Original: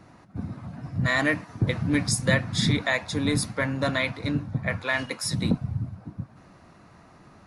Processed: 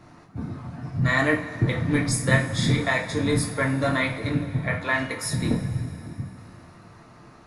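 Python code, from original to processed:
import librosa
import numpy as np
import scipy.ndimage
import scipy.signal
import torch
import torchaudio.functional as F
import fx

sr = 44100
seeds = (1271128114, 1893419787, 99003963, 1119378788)

y = fx.dynamic_eq(x, sr, hz=4800.0, q=0.75, threshold_db=-43.0, ratio=4.0, max_db=-6)
y = fx.rev_double_slope(y, sr, seeds[0], early_s=0.33, late_s=3.4, knee_db=-19, drr_db=-0.5)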